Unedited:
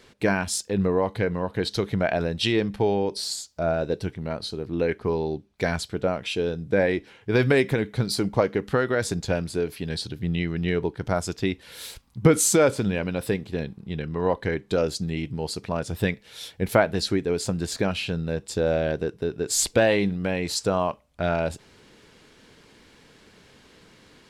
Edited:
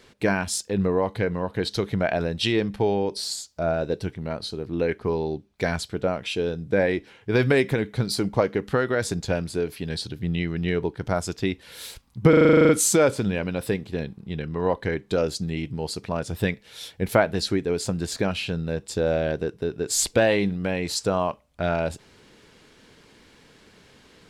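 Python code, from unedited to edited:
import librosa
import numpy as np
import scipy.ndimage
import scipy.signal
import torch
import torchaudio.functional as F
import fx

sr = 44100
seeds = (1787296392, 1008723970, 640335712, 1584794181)

y = fx.edit(x, sr, fx.stutter(start_s=12.29, slice_s=0.04, count=11), tone=tone)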